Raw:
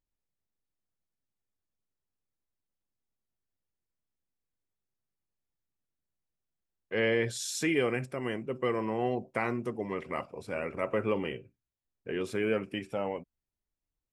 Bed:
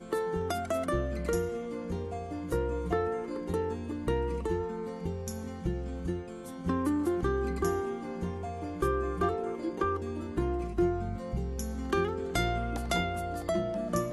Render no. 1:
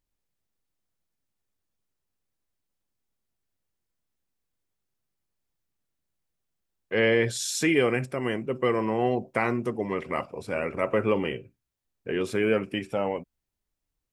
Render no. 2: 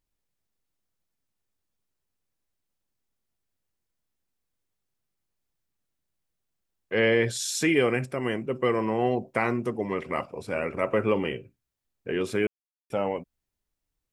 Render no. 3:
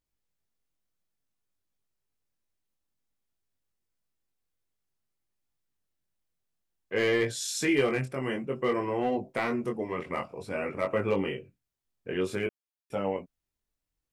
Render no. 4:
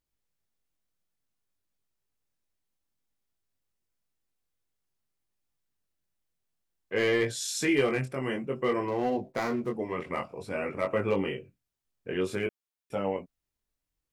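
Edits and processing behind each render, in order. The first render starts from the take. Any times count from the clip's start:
level +5.5 dB
0:12.47–0:12.90: silence
gain into a clipping stage and back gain 14.5 dB; chorus effect 0.55 Hz, delay 20 ms, depth 2.8 ms
0:08.88–0:09.77: running median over 15 samples

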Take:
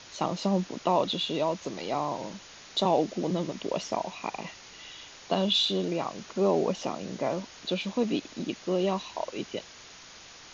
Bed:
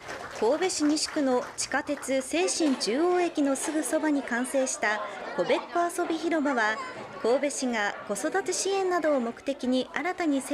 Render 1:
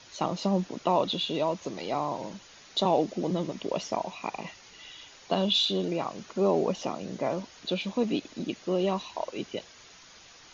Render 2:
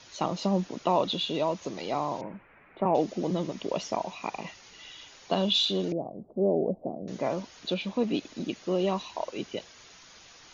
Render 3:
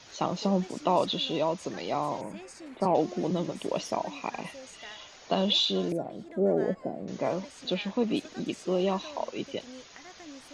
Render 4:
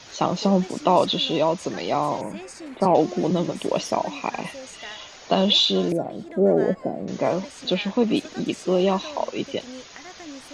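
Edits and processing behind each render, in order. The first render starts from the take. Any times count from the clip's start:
broadband denoise 6 dB, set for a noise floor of −49 dBFS
0:02.21–0:02.95: Chebyshev low-pass filter 2,400 Hz, order 5; 0:05.92–0:07.08: elliptic low-pass filter 690 Hz, stop band 80 dB; 0:07.74–0:08.14: high-frequency loss of the air 74 metres
mix in bed −20.5 dB
level +7 dB

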